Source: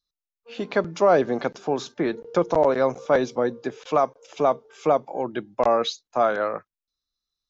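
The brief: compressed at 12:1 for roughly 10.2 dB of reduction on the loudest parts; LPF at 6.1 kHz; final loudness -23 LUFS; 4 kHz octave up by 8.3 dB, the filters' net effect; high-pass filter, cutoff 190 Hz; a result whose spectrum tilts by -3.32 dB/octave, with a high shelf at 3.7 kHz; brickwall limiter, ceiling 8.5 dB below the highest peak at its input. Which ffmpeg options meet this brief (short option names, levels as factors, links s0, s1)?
-af "highpass=190,lowpass=6100,highshelf=f=3700:g=6.5,equalizer=f=4000:t=o:g=6,acompressor=threshold=0.0631:ratio=12,volume=3.16,alimiter=limit=0.282:level=0:latency=1"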